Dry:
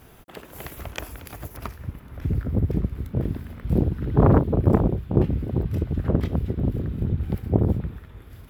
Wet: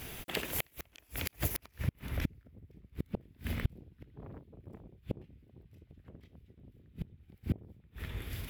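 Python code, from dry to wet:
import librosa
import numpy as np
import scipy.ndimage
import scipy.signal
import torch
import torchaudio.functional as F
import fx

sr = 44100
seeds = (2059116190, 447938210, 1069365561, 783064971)

y = fx.high_shelf_res(x, sr, hz=1700.0, db=7.0, q=1.5)
y = fx.gate_flip(y, sr, shuts_db=-20.0, range_db=-35)
y = F.gain(torch.from_numpy(y), 2.5).numpy()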